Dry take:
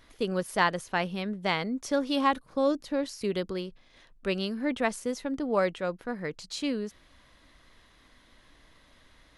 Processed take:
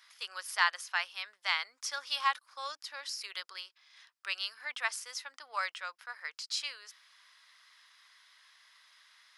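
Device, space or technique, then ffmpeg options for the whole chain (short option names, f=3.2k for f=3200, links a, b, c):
headphones lying on a table: -af "highpass=f=1.1k:w=0.5412,highpass=f=1.1k:w=1.3066,equalizer=f=5.1k:t=o:w=0.28:g=8"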